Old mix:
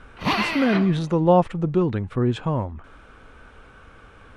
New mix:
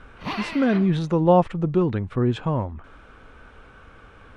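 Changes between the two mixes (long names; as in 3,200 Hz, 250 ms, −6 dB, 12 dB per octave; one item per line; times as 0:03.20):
background −7.5 dB
master: add high-shelf EQ 9,000 Hz −9 dB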